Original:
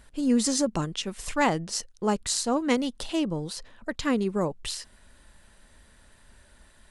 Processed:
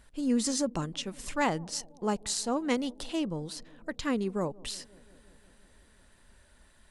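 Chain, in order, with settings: analogue delay 0.175 s, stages 1024, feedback 75%, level -24 dB; gain -4.5 dB

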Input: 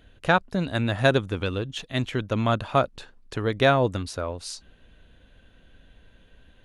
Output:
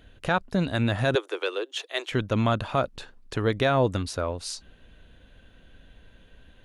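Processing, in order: 1.15–2.12 steep high-pass 340 Hz 72 dB/oct; limiter -14.5 dBFS, peak gain reduction 9 dB; gain +1.5 dB

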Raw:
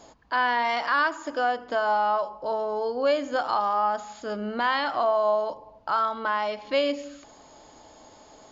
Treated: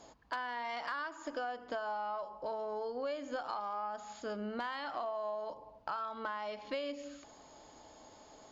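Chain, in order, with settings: compressor 6:1, threshold -30 dBFS, peak gain reduction 11.5 dB; added harmonics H 3 -19 dB, 4 -36 dB, 5 -34 dB, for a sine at -18.5 dBFS; gain -3.5 dB

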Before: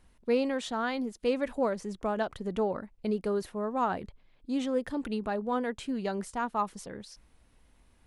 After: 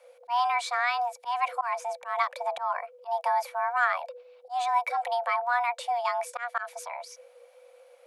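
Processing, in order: frequency shift +480 Hz; small resonant body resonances 400/2300 Hz, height 14 dB, ringing for 50 ms; auto swell 0.129 s; gain +3.5 dB

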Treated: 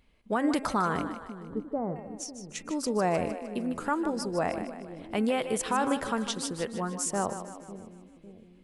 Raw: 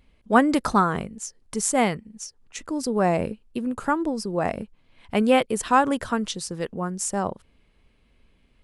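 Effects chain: low shelf 210 Hz -5 dB; de-hum 267.8 Hz, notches 10; limiter -15.5 dBFS, peak gain reduction 11 dB; 1.02–1.96 Gaussian blur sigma 9 samples; on a send: split-band echo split 420 Hz, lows 0.552 s, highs 0.153 s, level -10 dB; on the sum: gain -2.5 dB

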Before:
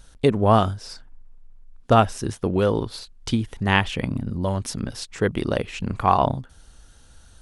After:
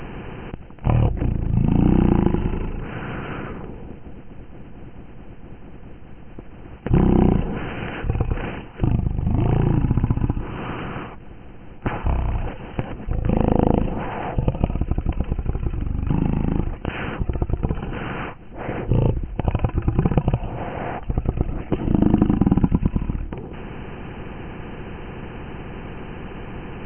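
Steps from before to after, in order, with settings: per-bin compression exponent 0.4; wide varispeed 0.276×; gain -4.5 dB

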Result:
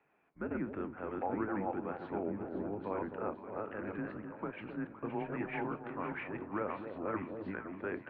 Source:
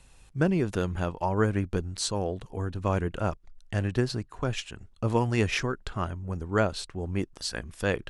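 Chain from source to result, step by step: reverse delay 0.49 s, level -2 dB; 2.23–2.84 tilt shelf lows +7.5 dB, about 720 Hz; limiter -17 dBFS, peak gain reduction 7.5 dB; flange 1.1 Hz, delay 7.7 ms, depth 6.1 ms, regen -69%; echo with dull and thin repeats by turns 0.258 s, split 910 Hz, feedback 69%, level -7.5 dB; mistuned SSB -100 Hz 290–2300 Hz; gain -2.5 dB

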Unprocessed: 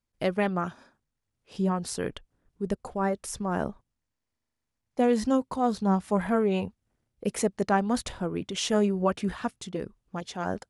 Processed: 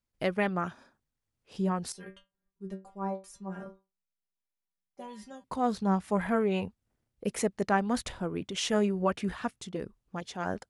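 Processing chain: dynamic EQ 2000 Hz, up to +4 dB, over -43 dBFS, Q 1.3; 1.92–5.44 metallic resonator 190 Hz, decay 0.25 s, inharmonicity 0.002; gain -3 dB

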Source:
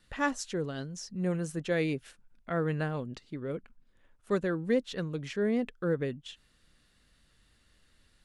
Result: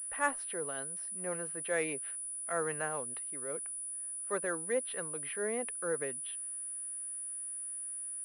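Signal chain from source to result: three-band isolator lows -20 dB, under 470 Hz, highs -20 dB, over 2800 Hz; transient shaper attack -3 dB, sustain +1 dB; pulse-width modulation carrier 9800 Hz; gain +2 dB

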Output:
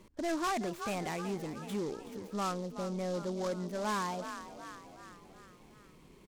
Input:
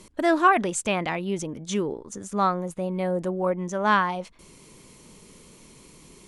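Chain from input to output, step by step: frequency-shifting echo 0.373 s, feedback 53%, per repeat +42 Hz, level -14.5 dB; soft clip -22 dBFS, distortion -8 dB; air absorption 170 m; noise-modulated delay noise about 4700 Hz, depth 0.036 ms; gain -6.5 dB

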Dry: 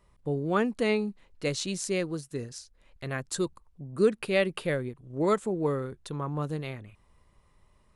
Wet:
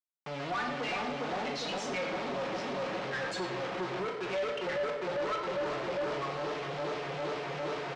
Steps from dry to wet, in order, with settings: per-bin expansion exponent 3; high shelf 4300 Hz -11.5 dB; comb 6.8 ms, depth 47%; analogue delay 0.404 s, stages 2048, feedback 73%, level -4 dB; compressor 16:1, threshold -39 dBFS, peak gain reduction 22 dB; bit-crush 9-bit; sample leveller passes 5; BPF 530–6900 Hz; reverb RT60 0.95 s, pre-delay 5 ms, DRR 1.5 dB; sample leveller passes 3; air absorption 130 m; gain -4 dB

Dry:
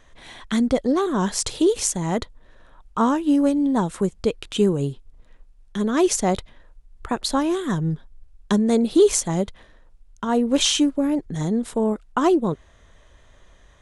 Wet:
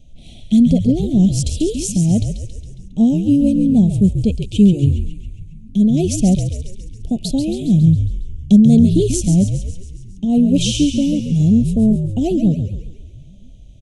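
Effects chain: spectral repair 6.93–7.19, 1300–3000 Hz both; elliptic band-stop 680–2600 Hz, stop band 40 dB; resonant low shelf 290 Hz +11 dB, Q 1.5; on a send: frequency-shifting echo 0.137 s, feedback 58%, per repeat -59 Hz, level -7.5 dB; on the sum: gain -1 dB

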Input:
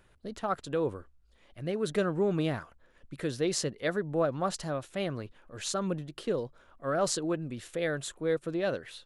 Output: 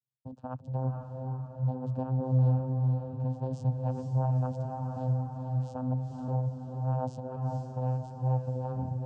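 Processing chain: tape stop at the end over 0.49 s; gate -53 dBFS, range -37 dB; tilt shelf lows +9 dB, about 670 Hz; notch 3500 Hz, Q 6.9; vocoder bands 8, saw 129 Hz; vibrato 1.5 Hz 21 cents; fixed phaser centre 870 Hz, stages 4; on a send: diffused feedback echo 0.467 s, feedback 53%, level -3.5 dB

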